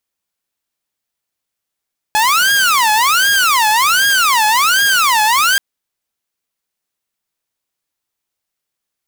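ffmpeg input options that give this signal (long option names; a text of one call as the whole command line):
ffmpeg -f lavfi -i "aevalsrc='0.422*(2*mod((1239.5*t-390.5/(2*PI*1.3)*sin(2*PI*1.3*t)),1)-1)':duration=3.43:sample_rate=44100" out.wav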